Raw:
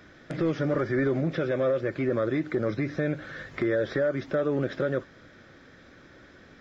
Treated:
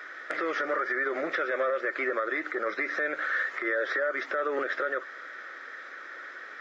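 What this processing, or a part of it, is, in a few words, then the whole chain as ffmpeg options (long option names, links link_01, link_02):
laptop speaker: -af "highpass=frequency=400:width=0.5412,highpass=frequency=400:width=1.3066,equalizer=frequency=1300:width_type=o:width=0.45:gain=11.5,equalizer=frequency=1900:width_type=o:width=0.48:gain=11.5,alimiter=limit=-23dB:level=0:latency=1:release=119,volume=3dB"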